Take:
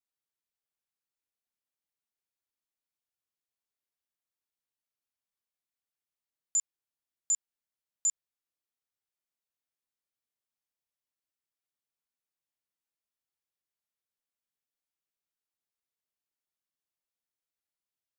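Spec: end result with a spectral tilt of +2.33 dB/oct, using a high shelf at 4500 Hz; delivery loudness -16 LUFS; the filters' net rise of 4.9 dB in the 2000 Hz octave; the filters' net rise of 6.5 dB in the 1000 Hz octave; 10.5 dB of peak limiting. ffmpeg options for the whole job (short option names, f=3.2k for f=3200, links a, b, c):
-af "equalizer=f=1k:t=o:g=7,equalizer=f=2k:t=o:g=3,highshelf=f=4.5k:g=6,volume=21dB,alimiter=limit=-7dB:level=0:latency=1"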